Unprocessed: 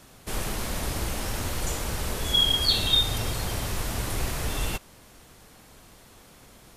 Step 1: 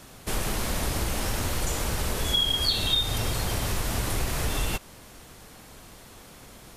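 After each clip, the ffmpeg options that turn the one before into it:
ffmpeg -i in.wav -af "acompressor=threshold=-28dB:ratio=2.5,volume=4dB" out.wav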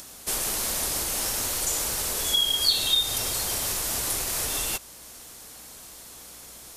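ffmpeg -i in.wav -af "aeval=exprs='val(0)+0.00355*(sin(2*PI*60*n/s)+sin(2*PI*2*60*n/s)/2+sin(2*PI*3*60*n/s)/3+sin(2*PI*4*60*n/s)/4+sin(2*PI*5*60*n/s)/5)':channel_layout=same,bass=frequency=250:gain=-10,treble=frequency=4000:gain=11,acompressor=mode=upward:threshold=-38dB:ratio=2.5,volume=-2.5dB" out.wav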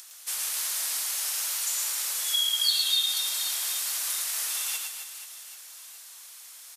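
ffmpeg -i in.wav -filter_complex "[0:a]highpass=1400,asplit=2[link_01][link_02];[link_02]aecho=0:1:110|264|479.6|781.4|1204:0.631|0.398|0.251|0.158|0.1[link_03];[link_01][link_03]amix=inputs=2:normalize=0,volume=-3.5dB" out.wav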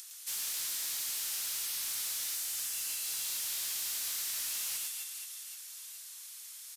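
ffmpeg -i in.wav -af "tiltshelf=frequency=1300:gain=-7,afftfilt=real='re*lt(hypot(re,im),0.1)':imag='im*lt(hypot(re,im),0.1)':win_size=1024:overlap=0.75,asoftclip=type=tanh:threshold=-23dB,volume=-7.5dB" out.wav

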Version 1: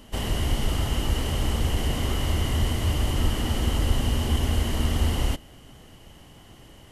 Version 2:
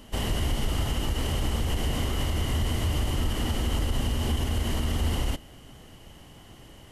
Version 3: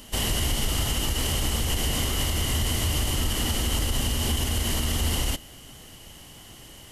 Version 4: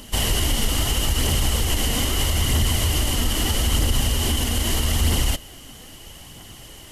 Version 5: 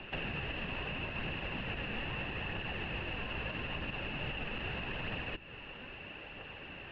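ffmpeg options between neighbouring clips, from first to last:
ffmpeg -i in.wav -af "alimiter=limit=-18dB:level=0:latency=1:release=61" out.wav
ffmpeg -i in.wav -af "highshelf=frequency=2800:gain=12" out.wav
ffmpeg -i in.wav -af "aphaser=in_gain=1:out_gain=1:delay=4.4:decay=0.29:speed=0.78:type=triangular,volume=3.5dB" out.wav
ffmpeg -i in.wav -filter_complex "[0:a]highpass=frequency=300:width_type=q:width=0.5412,highpass=frequency=300:width_type=q:width=1.307,lowpass=frequency=3100:width_type=q:width=0.5176,lowpass=frequency=3100:width_type=q:width=0.7071,lowpass=frequency=3100:width_type=q:width=1.932,afreqshift=-250,acrossover=split=180|1100[link_01][link_02][link_03];[link_01]acompressor=threshold=-41dB:ratio=4[link_04];[link_02]acompressor=threshold=-46dB:ratio=4[link_05];[link_03]acompressor=threshold=-42dB:ratio=4[link_06];[link_04][link_05][link_06]amix=inputs=3:normalize=0" out.wav

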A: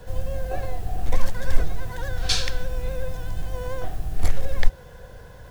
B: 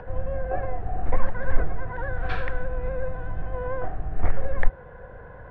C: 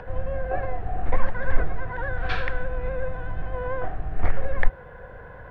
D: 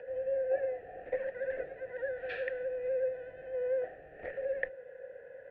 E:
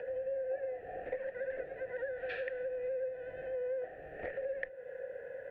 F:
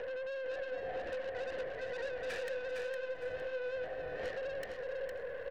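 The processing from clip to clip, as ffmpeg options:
ffmpeg -i in.wav -af "lowpass=frequency=1800:width=0.5412,lowpass=frequency=1800:width=1.3066,lowshelf=frequency=320:gain=-6,acompressor=mode=upward:threshold=-42dB:ratio=2.5,volume=4dB" out.wav
ffmpeg -i in.wav -af "highshelf=frequency=2200:gain=9.5" out.wav
ffmpeg -i in.wav -filter_complex "[0:a]asplit=3[link_01][link_02][link_03];[link_01]bandpass=frequency=530:width_type=q:width=8,volume=0dB[link_04];[link_02]bandpass=frequency=1840:width_type=q:width=8,volume=-6dB[link_05];[link_03]bandpass=frequency=2480:width_type=q:width=8,volume=-9dB[link_06];[link_04][link_05][link_06]amix=inputs=3:normalize=0,volume=1.5dB" out.wav
ffmpeg -i in.wav -af "acompressor=threshold=-43dB:ratio=3,volume=5dB" out.wav
ffmpeg -i in.wav -filter_complex "[0:a]aeval=exprs='(tanh(79.4*val(0)+0.65)-tanh(0.65))/79.4':channel_layout=same,asplit=2[link_01][link_02];[link_02]aeval=exprs='0.02*sin(PI/2*2.82*val(0)/0.02)':channel_layout=same,volume=-8dB[link_03];[link_01][link_03]amix=inputs=2:normalize=0,aecho=1:1:459|918|1377|1836:0.562|0.152|0.041|0.0111,volume=-1dB" out.wav

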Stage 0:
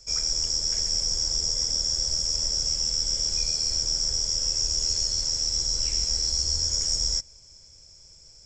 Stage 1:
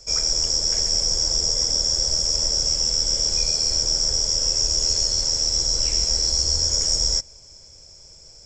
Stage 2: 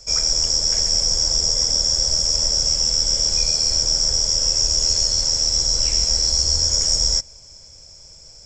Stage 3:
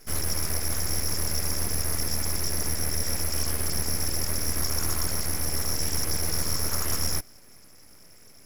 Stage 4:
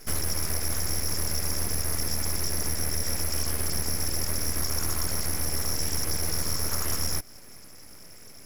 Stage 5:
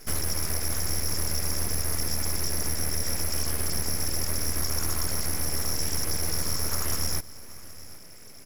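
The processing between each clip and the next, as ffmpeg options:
ffmpeg -i in.wav -af "equalizer=frequency=570:width_type=o:width=1.9:gain=6,volume=4.5dB" out.wav
ffmpeg -i in.wav -af "equalizer=frequency=380:width=2.2:gain=-4.5,volume=2.5dB" out.wav
ffmpeg -i in.wav -af "aeval=exprs='abs(val(0))':channel_layout=same,volume=-6dB" out.wav
ffmpeg -i in.wav -af "acompressor=threshold=-29dB:ratio=2.5,volume=4.5dB" out.wav
ffmpeg -i in.wav -af "aecho=1:1:772:0.106" out.wav

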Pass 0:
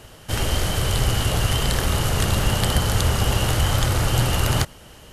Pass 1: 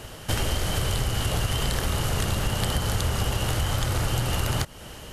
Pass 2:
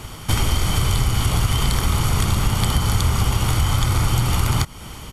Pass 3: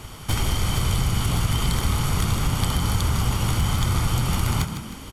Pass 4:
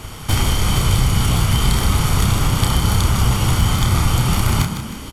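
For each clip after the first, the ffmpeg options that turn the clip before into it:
ffmpeg -i in.wav -af "acompressor=threshold=-26dB:ratio=6,volume=4dB" out.wav
ffmpeg -i in.wav -af "aecho=1:1:0.9:0.53,volume=4dB" out.wav
ffmpeg -i in.wav -filter_complex "[0:a]aeval=exprs='0.335*(abs(mod(val(0)/0.335+3,4)-2)-1)':channel_layout=same,asplit=6[link_01][link_02][link_03][link_04][link_05][link_06];[link_02]adelay=155,afreqshift=50,volume=-9dB[link_07];[link_03]adelay=310,afreqshift=100,volume=-16.7dB[link_08];[link_04]adelay=465,afreqshift=150,volume=-24.5dB[link_09];[link_05]adelay=620,afreqshift=200,volume=-32.2dB[link_10];[link_06]adelay=775,afreqshift=250,volume=-40dB[link_11];[link_01][link_07][link_08][link_09][link_10][link_11]amix=inputs=6:normalize=0,volume=-4dB" out.wav
ffmpeg -i in.wav -filter_complex "[0:a]asplit=2[link_01][link_02];[link_02]adelay=31,volume=-5.5dB[link_03];[link_01][link_03]amix=inputs=2:normalize=0,volume=5dB" out.wav

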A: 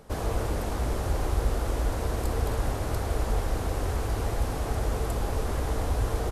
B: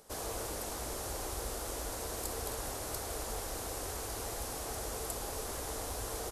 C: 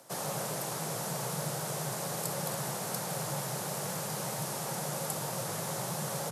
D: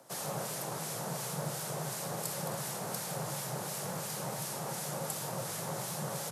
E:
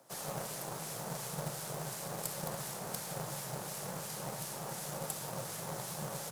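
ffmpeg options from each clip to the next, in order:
ffmpeg -i in.wav -af "bass=frequency=250:gain=-10,treble=frequency=4000:gain=12,volume=-7.5dB" out.wav
ffmpeg -i in.wav -af "afreqshift=100,volume=3.5dB" out.wav
ffmpeg -i in.wav -filter_complex "[0:a]acrossover=split=1600[link_01][link_02];[link_01]aeval=exprs='val(0)*(1-0.5/2+0.5/2*cos(2*PI*2.8*n/s))':channel_layout=same[link_03];[link_02]aeval=exprs='val(0)*(1-0.5/2-0.5/2*cos(2*PI*2.8*n/s))':channel_layout=same[link_04];[link_03][link_04]amix=inputs=2:normalize=0" out.wav
ffmpeg -i in.wav -af "aeval=exprs='0.126*(cos(1*acos(clip(val(0)/0.126,-1,1)))-cos(1*PI/2))+0.0112*(cos(2*acos(clip(val(0)/0.126,-1,1)))-cos(2*PI/2))+0.0112*(cos(3*acos(clip(val(0)/0.126,-1,1)))-cos(3*PI/2))+0.00562*(cos(7*acos(clip(val(0)/0.126,-1,1)))-cos(7*PI/2))':channel_layout=same,acrusher=bits=3:mode=log:mix=0:aa=0.000001,volume=2.5dB" out.wav

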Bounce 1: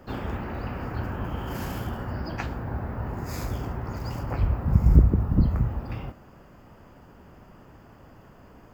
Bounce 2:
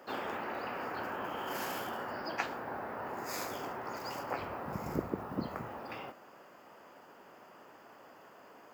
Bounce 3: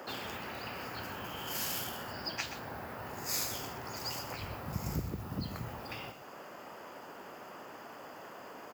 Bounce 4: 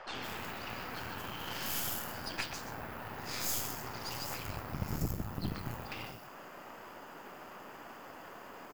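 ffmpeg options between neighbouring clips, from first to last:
ffmpeg -i in.wav -af "highpass=450" out.wav
ffmpeg -i in.wav -filter_complex "[0:a]acrossover=split=140|3000[link_01][link_02][link_03];[link_02]acompressor=threshold=-55dB:ratio=4[link_04];[link_01][link_04][link_03]amix=inputs=3:normalize=0,aecho=1:1:126:0.266,volume=9.5dB" out.wav
ffmpeg -i in.wav -filter_complex "[0:a]acrossover=split=520|5000[link_01][link_02][link_03];[link_01]adelay=60[link_04];[link_03]adelay=150[link_05];[link_04][link_02][link_05]amix=inputs=3:normalize=0,aeval=exprs='0.0944*(cos(1*acos(clip(val(0)/0.0944,-1,1)))-cos(1*PI/2))+0.0119*(cos(8*acos(clip(val(0)/0.0944,-1,1)))-cos(8*PI/2))':channel_layout=same" out.wav

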